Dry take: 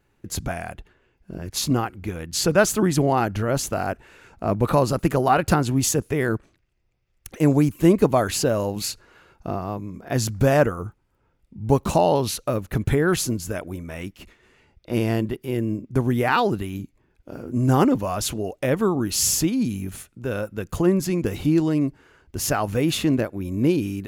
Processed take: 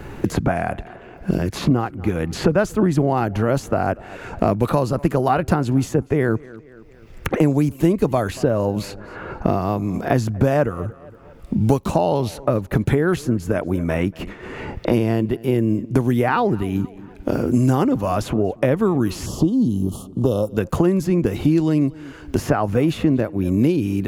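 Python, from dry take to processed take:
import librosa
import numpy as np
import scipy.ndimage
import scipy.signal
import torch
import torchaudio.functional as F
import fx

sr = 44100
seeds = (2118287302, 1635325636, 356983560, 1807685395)

p1 = fx.cheby1_bandstop(x, sr, low_hz=1200.0, high_hz=3000.0, order=4, at=(19.26, 20.57))
p2 = fx.high_shelf(p1, sr, hz=2100.0, db=-10.5)
p3 = p2 + fx.echo_tape(p2, sr, ms=234, feedback_pct=23, wet_db=-23.5, lp_hz=4000.0, drive_db=10.0, wow_cents=15, dry=0)
p4 = fx.band_squash(p3, sr, depth_pct=100)
y = p4 * librosa.db_to_amplitude(3.0)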